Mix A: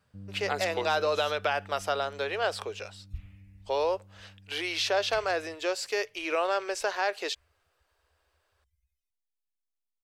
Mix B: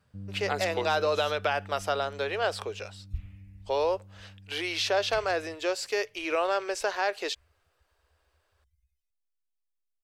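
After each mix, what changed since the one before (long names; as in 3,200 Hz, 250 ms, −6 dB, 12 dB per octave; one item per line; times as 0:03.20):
master: add low-shelf EQ 270 Hz +4.5 dB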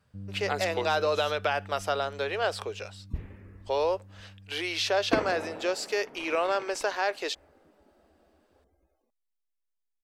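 second sound: remove inverse Chebyshev band-stop filter 210–1,300 Hz, stop band 40 dB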